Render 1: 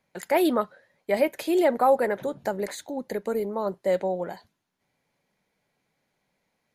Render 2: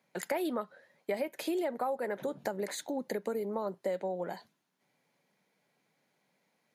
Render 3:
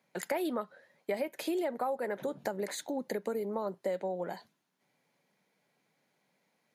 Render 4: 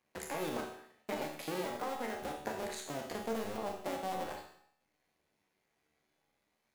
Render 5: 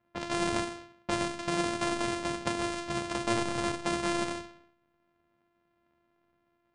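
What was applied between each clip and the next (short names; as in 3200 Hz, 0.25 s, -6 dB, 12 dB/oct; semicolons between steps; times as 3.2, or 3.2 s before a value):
HPF 140 Hz 24 dB/oct; compressor 6:1, threshold -31 dBFS, peak gain reduction 15 dB
nothing audible
cycle switcher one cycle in 2, muted; resonator 75 Hz, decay 0.53 s, harmonics all, mix 80%; reverb RT60 0.65 s, pre-delay 29 ms, DRR 4 dB; gain +6 dB
sample sorter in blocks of 128 samples; low-pass opened by the level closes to 2100 Hz, open at -35 dBFS; brick-wall FIR low-pass 10000 Hz; gain +7.5 dB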